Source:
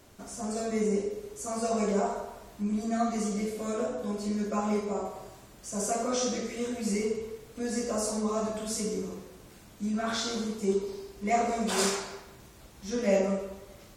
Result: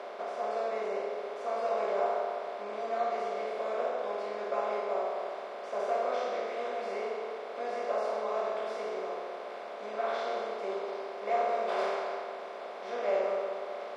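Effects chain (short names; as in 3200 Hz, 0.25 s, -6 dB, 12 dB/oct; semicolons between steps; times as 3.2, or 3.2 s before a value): per-bin compression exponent 0.4; ladder high-pass 420 Hz, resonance 25%; air absorption 370 m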